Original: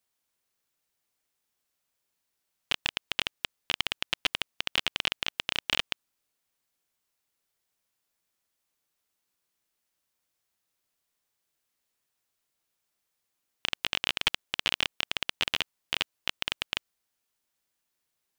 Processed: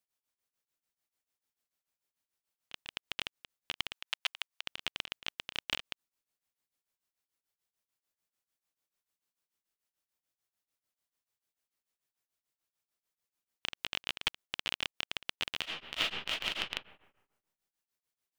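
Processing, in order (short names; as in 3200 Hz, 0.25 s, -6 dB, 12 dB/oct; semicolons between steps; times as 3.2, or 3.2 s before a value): 3.92–4.62 HPF 700 Hz 24 dB/oct; 15.6–16.61 reverb throw, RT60 1.1 s, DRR -6.5 dB; beating tremolo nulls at 6.8 Hz; gain -5.5 dB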